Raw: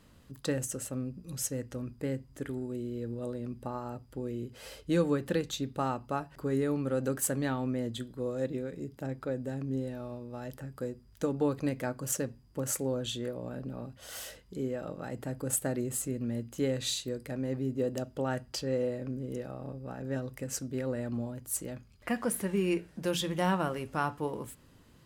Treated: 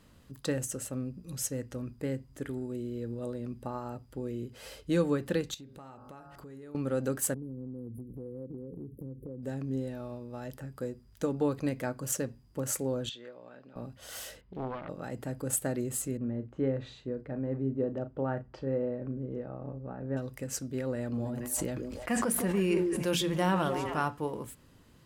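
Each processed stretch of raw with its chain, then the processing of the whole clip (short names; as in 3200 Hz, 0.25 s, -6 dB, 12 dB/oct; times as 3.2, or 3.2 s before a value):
5.54–6.75 de-hum 50.15 Hz, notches 33 + compressor 5:1, threshold -46 dBFS
7.34–9.43 brick-wall FIR band-stop 550–9300 Hz + low shelf 450 Hz +7.5 dB + compressor 5:1, threshold -39 dBFS
13.09–13.76 HPF 1400 Hz 6 dB/oct + air absorption 180 m
14.41–14.89 self-modulated delay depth 0.85 ms + air absorption 350 m
16.17–20.17 LPF 1400 Hz + doubler 37 ms -12 dB
20.94–24.08 delay with a stepping band-pass 0.155 s, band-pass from 330 Hz, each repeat 1.4 oct, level -4 dB + sustainer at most 25 dB/s
whole clip: dry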